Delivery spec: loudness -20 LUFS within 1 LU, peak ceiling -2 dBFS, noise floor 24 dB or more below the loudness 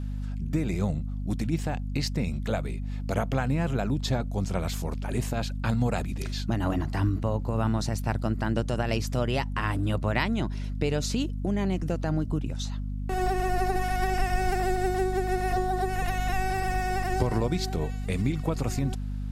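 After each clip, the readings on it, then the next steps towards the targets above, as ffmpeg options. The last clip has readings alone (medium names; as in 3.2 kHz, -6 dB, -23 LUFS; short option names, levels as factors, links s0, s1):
hum 50 Hz; highest harmonic 250 Hz; hum level -29 dBFS; loudness -29.0 LUFS; peak level -9.0 dBFS; loudness target -20.0 LUFS
-> -af "bandreject=f=50:t=h:w=4,bandreject=f=100:t=h:w=4,bandreject=f=150:t=h:w=4,bandreject=f=200:t=h:w=4,bandreject=f=250:t=h:w=4"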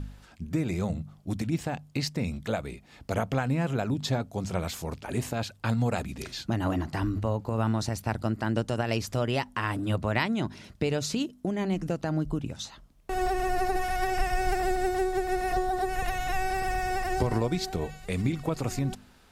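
hum not found; loudness -30.0 LUFS; peak level -10.5 dBFS; loudness target -20.0 LUFS
-> -af "volume=3.16,alimiter=limit=0.794:level=0:latency=1"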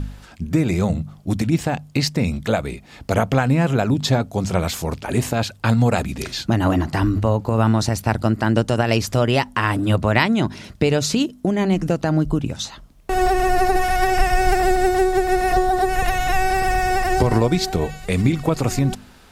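loudness -20.0 LUFS; peak level -2.0 dBFS; noise floor -46 dBFS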